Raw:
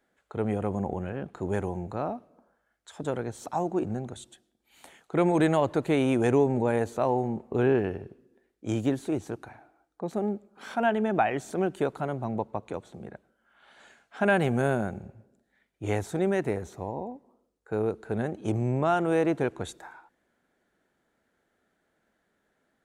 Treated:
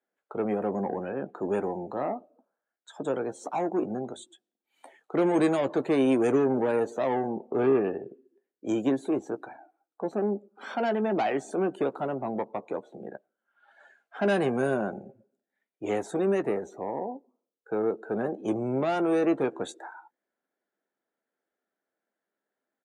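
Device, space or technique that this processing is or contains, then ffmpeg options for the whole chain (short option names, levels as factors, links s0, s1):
one-band saturation: -filter_complex "[0:a]acrossover=split=310|3200[s0][s1][s2];[s1]asoftclip=type=tanh:threshold=0.0335[s3];[s0][s3][s2]amix=inputs=3:normalize=0,highpass=250,afftdn=nr=17:nf=-50,equalizer=f=530:w=0.32:g=5,asplit=2[s4][s5];[s5]adelay=15,volume=0.266[s6];[s4][s6]amix=inputs=2:normalize=0"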